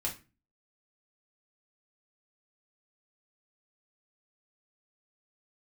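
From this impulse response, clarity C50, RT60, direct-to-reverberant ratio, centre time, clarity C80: 11.5 dB, 0.30 s, −2.5 dB, 17 ms, 18.5 dB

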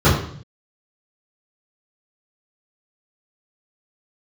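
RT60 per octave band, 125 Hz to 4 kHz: 1.0, 0.70, 0.60, 0.55, 0.55, 0.60 seconds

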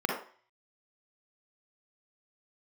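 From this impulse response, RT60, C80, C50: 0.45 s, 8.0 dB, 1.5 dB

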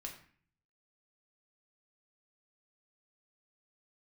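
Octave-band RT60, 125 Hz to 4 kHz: 0.85, 0.70, 0.45, 0.50, 0.55, 0.40 seconds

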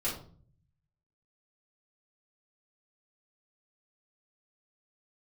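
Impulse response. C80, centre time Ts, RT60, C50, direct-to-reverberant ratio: 11.0 dB, 32 ms, 0.45 s, 6.0 dB, −9.0 dB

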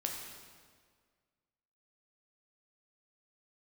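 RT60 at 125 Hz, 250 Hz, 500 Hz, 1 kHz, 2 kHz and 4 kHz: 1.8, 1.8, 1.9, 1.7, 1.5, 1.4 seconds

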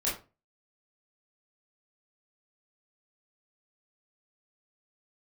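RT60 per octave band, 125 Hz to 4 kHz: 0.40, 0.35, 0.30, 0.30, 0.25, 0.20 seconds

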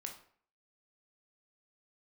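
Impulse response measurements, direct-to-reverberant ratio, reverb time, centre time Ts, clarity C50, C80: 2.5 dB, 0.55 s, 18 ms, 8.0 dB, 12.5 dB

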